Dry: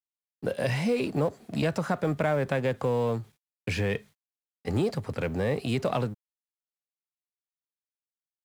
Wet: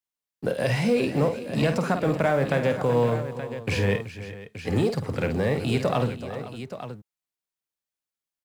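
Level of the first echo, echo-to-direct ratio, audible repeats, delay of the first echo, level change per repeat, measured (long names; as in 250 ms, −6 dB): −8.0 dB, −5.5 dB, 4, 50 ms, repeats not evenly spaced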